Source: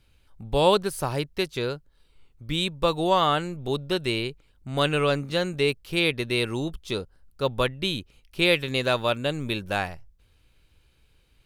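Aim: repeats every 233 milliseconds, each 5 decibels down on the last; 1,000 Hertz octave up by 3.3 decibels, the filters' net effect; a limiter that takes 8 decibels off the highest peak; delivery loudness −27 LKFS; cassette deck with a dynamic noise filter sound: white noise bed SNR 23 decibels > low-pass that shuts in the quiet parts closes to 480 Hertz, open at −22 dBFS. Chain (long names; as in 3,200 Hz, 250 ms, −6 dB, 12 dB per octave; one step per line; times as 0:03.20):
parametric band 1,000 Hz +4 dB
brickwall limiter −13.5 dBFS
repeating echo 233 ms, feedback 56%, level −5 dB
white noise bed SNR 23 dB
low-pass that shuts in the quiet parts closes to 480 Hz, open at −22 dBFS
level −1 dB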